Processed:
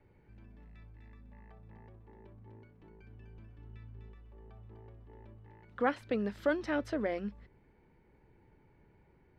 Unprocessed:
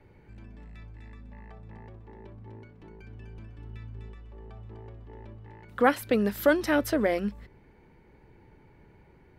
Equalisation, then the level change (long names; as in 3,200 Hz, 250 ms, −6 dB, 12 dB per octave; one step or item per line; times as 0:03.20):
high-frequency loss of the air 110 metres
−8.0 dB